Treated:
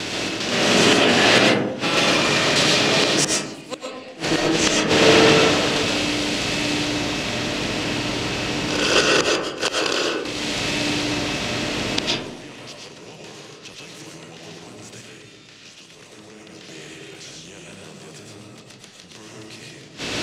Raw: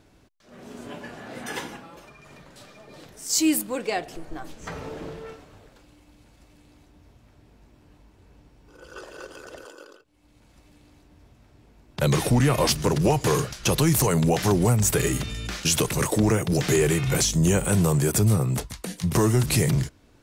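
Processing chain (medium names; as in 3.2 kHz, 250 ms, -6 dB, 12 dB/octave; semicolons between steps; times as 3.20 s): spectral levelling over time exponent 0.6; gate with hold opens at -31 dBFS; frequency weighting D; 14.99–16.40 s: compression, threshold -16 dBFS, peak gain reduction 8.5 dB; inverted gate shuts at -13 dBFS, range -35 dB; distance through air 53 m; reverberation RT60 1.0 s, pre-delay 75 ms, DRR -2 dB; loudness maximiser +10.5 dB; trim -1 dB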